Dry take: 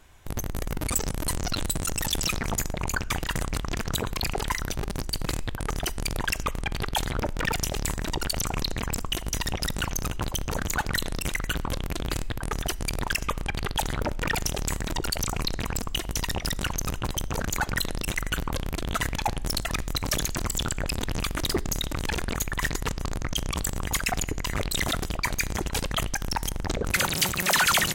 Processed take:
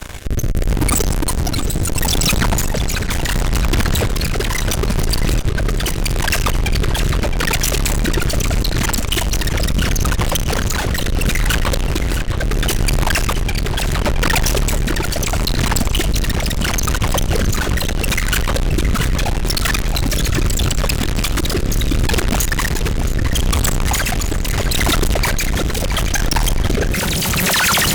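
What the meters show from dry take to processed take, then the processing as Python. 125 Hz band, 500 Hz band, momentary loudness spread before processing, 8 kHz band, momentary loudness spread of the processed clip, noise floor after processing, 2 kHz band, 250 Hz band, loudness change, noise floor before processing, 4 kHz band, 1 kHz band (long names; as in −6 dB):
+13.0 dB, +10.5 dB, 4 LU, +9.0 dB, 4 LU, −20 dBFS, +8.5 dB, +12.0 dB, +10.5 dB, −35 dBFS, +9.0 dB, +7.5 dB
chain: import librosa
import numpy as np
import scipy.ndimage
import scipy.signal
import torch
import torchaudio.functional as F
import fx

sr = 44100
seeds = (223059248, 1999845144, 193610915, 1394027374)

y = fx.fuzz(x, sr, gain_db=47.0, gate_db=-54.0)
y = fx.rotary(y, sr, hz=0.75)
y = fx.echo_tape(y, sr, ms=669, feedback_pct=51, wet_db=-7.5, lp_hz=5000.0, drive_db=5.0, wow_cents=26)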